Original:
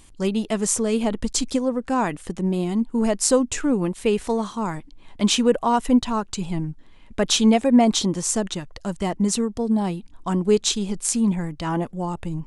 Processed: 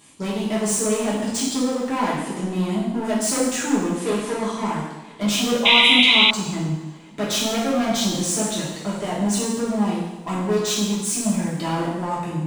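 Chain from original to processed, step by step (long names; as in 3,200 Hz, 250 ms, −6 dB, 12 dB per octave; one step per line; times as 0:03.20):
high-pass filter 160 Hz 12 dB per octave
in parallel at −2.5 dB: downward compressor, threshold −27 dBFS, peak gain reduction 14.5 dB
on the sum: hard clipping −19.5 dBFS, distortion −8 dB
coupled-rooms reverb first 0.98 s, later 3 s, from −20 dB, DRR −8.5 dB
sound drawn into the spectrogram noise, 0:05.65–0:06.31, 2,000–4,000 Hz −7 dBFS
level −7.5 dB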